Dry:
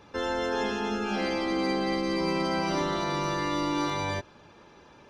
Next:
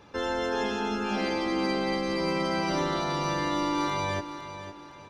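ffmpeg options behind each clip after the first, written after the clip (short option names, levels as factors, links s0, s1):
-af "aecho=1:1:509|1018|1527|2036:0.266|0.0984|0.0364|0.0135"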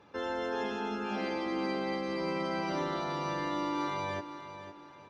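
-af "highpass=f=140:p=1,aemphasis=mode=reproduction:type=50kf,volume=0.596"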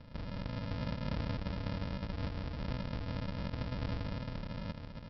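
-af "afftfilt=real='re*lt(hypot(re,im),0.0398)':imag='im*lt(hypot(re,im),0.0398)':win_size=1024:overlap=0.75,highpass=62,aresample=11025,acrusher=samples=29:mix=1:aa=0.000001,aresample=44100,volume=2.11"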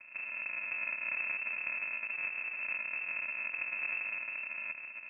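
-af "lowpass=f=2300:t=q:w=0.5098,lowpass=f=2300:t=q:w=0.6013,lowpass=f=2300:t=q:w=0.9,lowpass=f=2300:t=q:w=2.563,afreqshift=-2700"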